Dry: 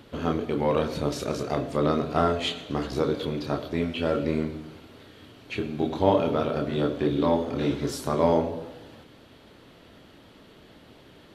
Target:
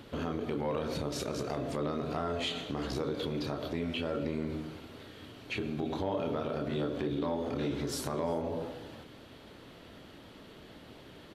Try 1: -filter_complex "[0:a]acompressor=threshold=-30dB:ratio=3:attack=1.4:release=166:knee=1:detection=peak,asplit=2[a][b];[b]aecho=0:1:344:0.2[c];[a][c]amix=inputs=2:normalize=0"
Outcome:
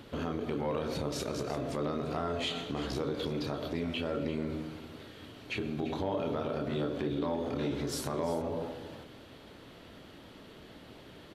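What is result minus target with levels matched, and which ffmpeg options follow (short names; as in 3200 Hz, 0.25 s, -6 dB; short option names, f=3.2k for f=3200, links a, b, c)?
echo-to-direct +11.5 dB
-filter_complex "[0:a]acompressor=threshold=-30dB:ratio=3:attack=1.4:release=166:knee=1:detection=peak,asplit=2[a][b];[b]aecho=0:1:344:0.0531[c];[a][c]amix=inputs=2:normalize=0"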